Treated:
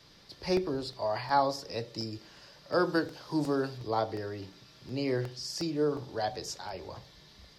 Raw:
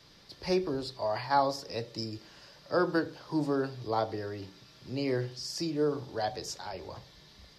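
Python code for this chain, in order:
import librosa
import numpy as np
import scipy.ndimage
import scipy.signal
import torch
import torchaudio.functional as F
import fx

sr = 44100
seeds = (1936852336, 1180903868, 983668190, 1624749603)

y = fx.high_shelf(x, sr, hz=4400.0, db=6.5, at=(2.74, 3.78))
y = fx.buffer_crackle(y, sr, first_s=0.57, period_s=0.36, block=64, kind='repeat')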